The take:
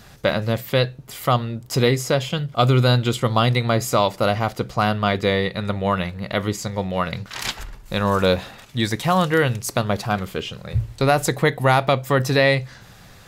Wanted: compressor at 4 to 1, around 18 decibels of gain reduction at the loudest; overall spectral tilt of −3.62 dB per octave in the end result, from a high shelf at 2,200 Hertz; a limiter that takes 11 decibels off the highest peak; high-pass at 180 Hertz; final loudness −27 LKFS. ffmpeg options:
ffmpeg -i in.wav -af "highpass=180,highshelf=frequency=2200:gain=7,acompressor=threshold=-34dB:ratio=4,volume=11dB,alimiter=limit=-13dB:level=0:latency=1" out.wav

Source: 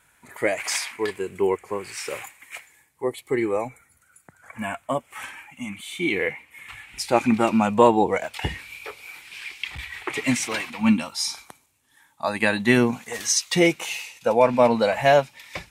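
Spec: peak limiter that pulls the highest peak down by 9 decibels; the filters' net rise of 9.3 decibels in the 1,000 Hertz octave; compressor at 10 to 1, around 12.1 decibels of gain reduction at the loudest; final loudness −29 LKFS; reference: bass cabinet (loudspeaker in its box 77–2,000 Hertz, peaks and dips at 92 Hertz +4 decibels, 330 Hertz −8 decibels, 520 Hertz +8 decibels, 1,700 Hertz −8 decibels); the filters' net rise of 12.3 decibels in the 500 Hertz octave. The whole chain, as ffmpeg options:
ffmpeg -i in.wav -af "equalizer=frequency=500:width_type=o:gain=7,equalizer=frequency=1000:width_type=o:gain=9,acompressor=threshold=-15dB:ratio=10,alimiter=limit=-12dB:level=0:latency=1,highpass=frequency=77:width=0.5412,highpass=frequency=77:width=1.3066,equalizer=frequency=92:width_type=q:width=4:gain=4,equalizer=frequency=330:width_type=q:width=4:gain=-8,equalizer=frequency=520:width_type=q:width=4:gain=8,equalizer=frequency=1700:width_type=q:width=4:gain=-8,lowpass=frequency=2000:width=0.5412,lowpass=frequency=2000:width=1.3066,volume=-5.5dB" out.wav

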